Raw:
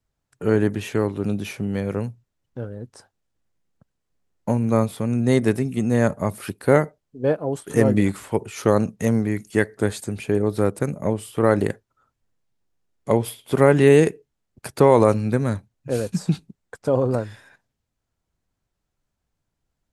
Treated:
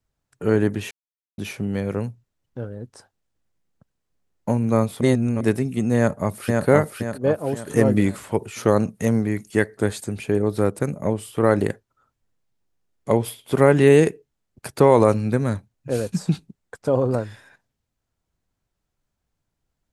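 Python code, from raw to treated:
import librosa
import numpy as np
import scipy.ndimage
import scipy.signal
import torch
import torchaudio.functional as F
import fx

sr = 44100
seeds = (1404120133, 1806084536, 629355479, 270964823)

y = fx.echo_throw(x, sr, start_s=5.96, length_s=0.69, ms=520, feedback_pct=45, wet_db=-2.5)
y = fx.edit(y, sr, fx.silence(start_s=0.91, length_s=0.47),
    fx.reverse_span(start_s=5.01, length_s=0.4), tone=tone)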